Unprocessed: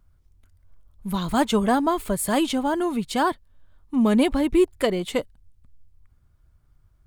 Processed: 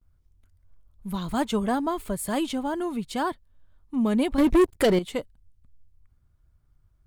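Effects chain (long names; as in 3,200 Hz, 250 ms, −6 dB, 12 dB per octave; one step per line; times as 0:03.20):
noise gate with hold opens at −53 dBFS
low-shelf EQ 350 Hz +2.5 dB
0:04.38–0:04.99: leveller curve on the samples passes 3
level −6 dB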